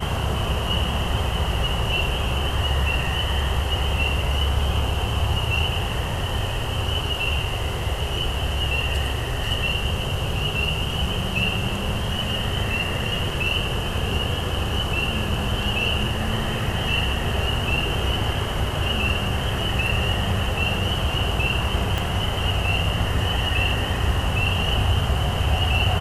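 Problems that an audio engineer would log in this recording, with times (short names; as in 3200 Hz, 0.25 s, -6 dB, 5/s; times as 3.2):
21.98 pop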